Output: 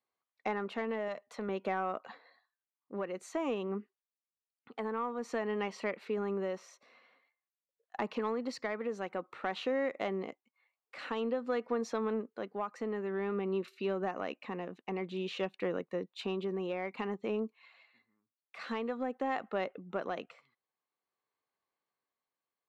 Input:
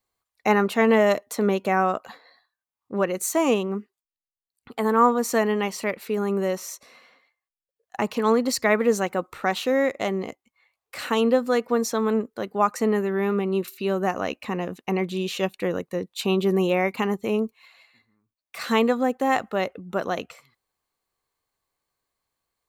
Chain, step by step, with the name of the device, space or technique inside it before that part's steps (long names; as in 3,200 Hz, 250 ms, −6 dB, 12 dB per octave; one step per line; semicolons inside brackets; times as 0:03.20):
AM radio (band-pass filter 190–3,300 Hz; downward compressor 5 to 1, threshold −22 dBFS, peak gain reduction 9 dB; soft clipping −13.5 dBFS, distortion −25 dB; amplitude tremolo 0.51 Hz, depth 36%)
0:01.08–0:01.49: parametric band 330 Hz −12.5 dB 0.62 octaves
level −6 dB